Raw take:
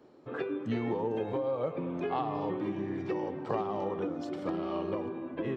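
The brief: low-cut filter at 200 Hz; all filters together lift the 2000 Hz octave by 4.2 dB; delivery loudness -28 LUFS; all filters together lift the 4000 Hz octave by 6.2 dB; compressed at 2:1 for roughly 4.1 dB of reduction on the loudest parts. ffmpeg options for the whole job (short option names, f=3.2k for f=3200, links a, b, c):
-af "highpass=200,equalizer=f=2k:t=o:g=3.5,equalizer=f=4k:t=o:g=7,acompressor=threshold=-35dB:ratio=2,volume=9.5dB"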